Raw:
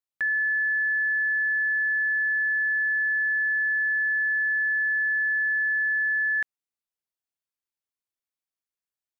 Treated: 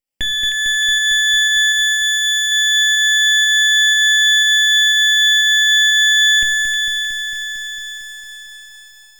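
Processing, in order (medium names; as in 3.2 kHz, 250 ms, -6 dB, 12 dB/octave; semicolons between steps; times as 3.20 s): comb filter that takes the minimum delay 0.39 ms; 1.72–2.52 s: peaking EQ 1.7 kHz -10.5 dB 1.9 oct; in parallel at -1 dB: volume shaper 122 bpm, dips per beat 1, -23 dB, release 178 ms; 4.22–5.38 s: on the sum: doubling 20 ms -9.5 dB; feedback echo behind a high-pass 310 ms, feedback 60%, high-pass 1.7 kHz, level -4 dB; on a send at -6 dB: reverberation RT60 0.40 s, pre-delay 4 ms; on the sum: bit-crushed delay 226 ms, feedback 80%, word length 8-bit, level -7.5 dB; trim +3.5 dB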